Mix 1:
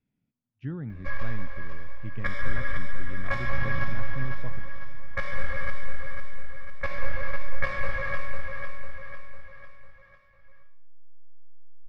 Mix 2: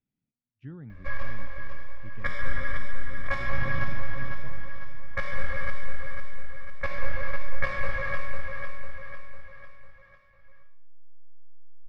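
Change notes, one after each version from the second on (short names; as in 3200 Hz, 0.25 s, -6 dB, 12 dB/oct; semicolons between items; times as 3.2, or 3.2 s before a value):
speech -7.0 dB; reverb: off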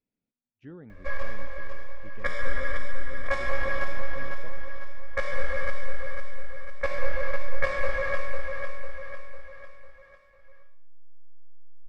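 second sound: add band-pass 750 Hz, Q 0.59; master: add ten-band EQ 125 Hz -10 dB, 500 Hz +8 dB, 8000 Hz +9 dB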